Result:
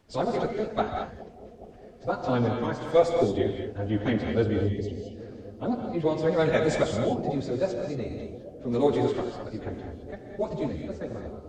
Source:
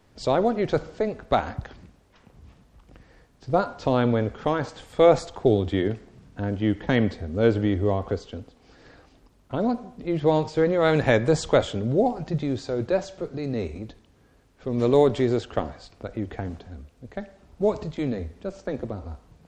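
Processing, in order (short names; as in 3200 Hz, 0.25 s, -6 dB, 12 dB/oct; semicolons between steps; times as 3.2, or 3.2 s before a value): spectral gain 7.64–8.77, 490–1700 Hz -26 dB; plain phase-vocoder stretch 0.59×; analogue delay 0.414 s, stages 2048, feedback 81%, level -18.5 dB; non-linear reverb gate 0.24 s rising, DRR 3 dB; gain -1.5 dB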